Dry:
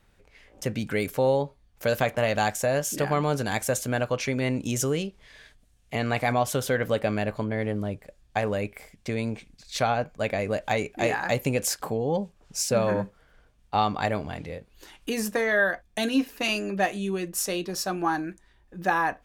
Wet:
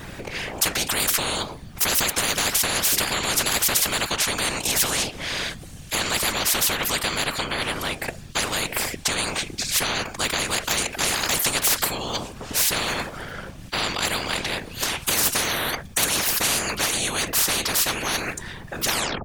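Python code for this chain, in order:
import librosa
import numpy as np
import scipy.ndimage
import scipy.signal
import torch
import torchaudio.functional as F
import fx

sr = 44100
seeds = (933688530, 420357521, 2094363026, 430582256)

y = fx.tape_stop_end(x, sr, length_s=0.35)
y = fx.whisperise(y, sr, seeds[0])
y = fx.spectral_comp(y, sr, ratio=10.0)
y = F.gain(torch.from_numpy(y), 5.0).numpy()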